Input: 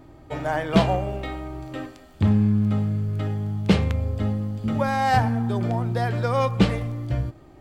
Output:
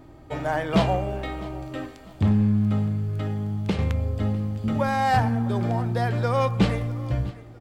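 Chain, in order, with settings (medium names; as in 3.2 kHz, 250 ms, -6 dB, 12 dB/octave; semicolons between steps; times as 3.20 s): 2.88–3.79 s: compression 6:1, threshold -21 dBFS, peak gain reduction 9 dB; saturation -10 dBFS, distortion -20 dB; feedback delay 652 ms, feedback 36%, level -20 dB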